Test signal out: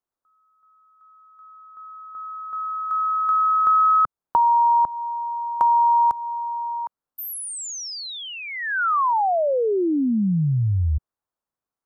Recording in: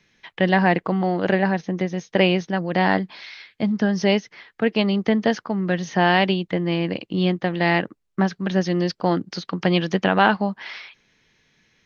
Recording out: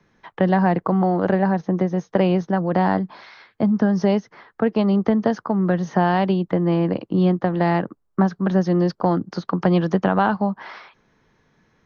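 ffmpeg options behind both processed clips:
-filter_complex "[0:a]highshelf=f=1.7k:t=q:w=1.5:g=-11.5,acrossover=split=170|3000[a][b][c];[b]acompressor=threshold=-24dB:ratio=2.5[d];[a][d][c]amix=inputs=3:normalize=0,volume=5dB"

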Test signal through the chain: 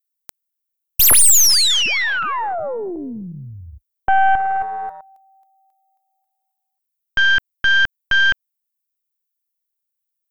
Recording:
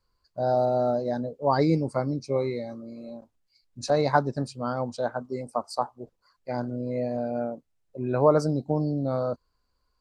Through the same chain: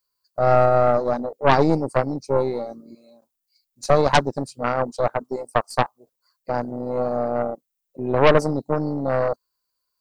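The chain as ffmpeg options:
-af "aemphasis=mode=production:type=riaa,afwtdn=0.0316,aeval=exprs='0.473*(cos(1*acos(clip(val(0)/0.473,-1,1)))-cos(1*PI/2))+0.168*(cos(5*acos(clip(val(0)/0.473,-1,1)))-cos(5*PI/2))+0.15*(cos(8*acos(clip(val(0)/0.473,-1,1)))-cos(8*PI/2))':c=same"

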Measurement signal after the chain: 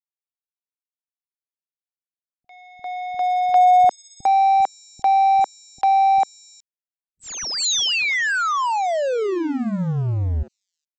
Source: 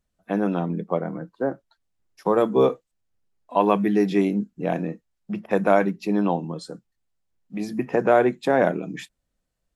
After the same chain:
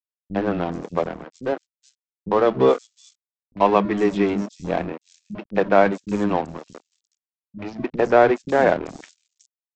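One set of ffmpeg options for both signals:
-filter_complex "[0:a]aresample=16000,aeval=exprs='sgn(val(0))*max(abs(val(0))-0.0237,0)':c=same,aresample=44100,acrossover=split=240|5300[a][b][c];[b]adelay=50[d];[c]adelay=420[e];[a][d][e]amix=inputs=3:normalize=0,volume=4dB"

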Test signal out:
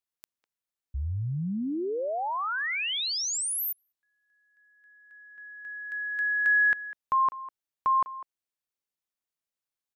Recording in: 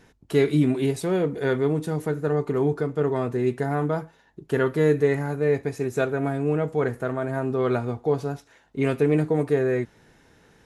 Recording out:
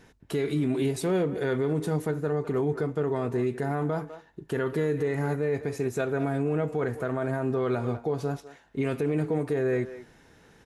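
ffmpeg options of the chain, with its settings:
-filter_complex "[0:a]asplit=2[a][b];[b]adelay=200,highpass=300,lowpass=3.4k,asoftclip=type=hard:threshold=-17dB,volume=-16dB[c];[a][c]amix=inputs=2:normalize=0,alimiter=limit=-18.5dB:level=0:latency=1:release=73"

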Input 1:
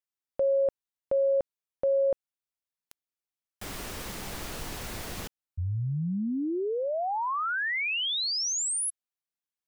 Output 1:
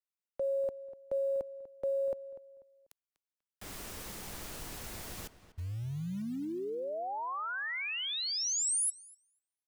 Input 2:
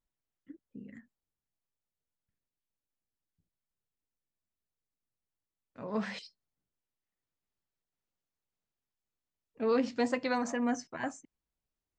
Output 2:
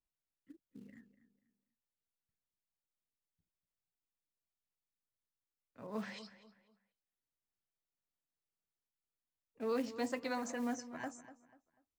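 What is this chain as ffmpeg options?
-filter_complex "[0:a]acrossover=split=290|800[a][b][c];[a]acrusher=bits=5:mode=log:mix=0:aa=0.000001[d];[d][b][c]amix=inputs=3:normalize=0,asplit=2[e][f];[f]adelay=245,lowpass=f=3.2k:p=1,volume=-14dB,asplit=2[g][h];[h]adelay=245,lowpass=f=3.2k:p=1,volume=0.33,asplit=2[i][j];[j]adelay=245,lowpass=f=3.2k:p=1,volume=0.33[k];[e][g][i][k]amix=inputs=4:normalize=0,adynamicequalizer=threshold=0.00447:dfrequency=5500:dqfactor=0.7:tfrequency=5500:tqfactor=0.7:attack=5:release=100:ratio=0.375:range=3.5:mode=boostabove:tftype=highshelf,volume=-7.5dB"

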